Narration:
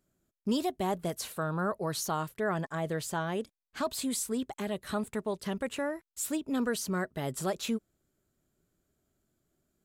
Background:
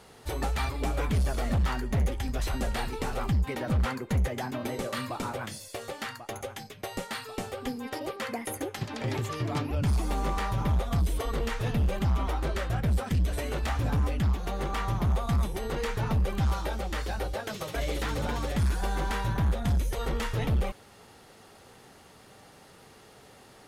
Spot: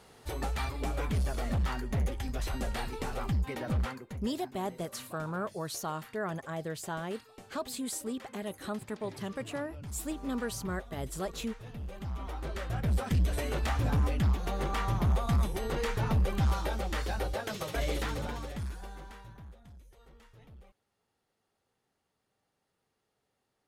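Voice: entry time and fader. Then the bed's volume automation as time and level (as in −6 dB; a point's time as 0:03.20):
3.75 s, −4.0 dB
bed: 0:03.79 −4 dB
0:04.23 −16.5 dB
0:11.66 −16.5 dB
0:13.07 −1 dB
0:17.94 −1 dB
0:19.73 −27.5 dB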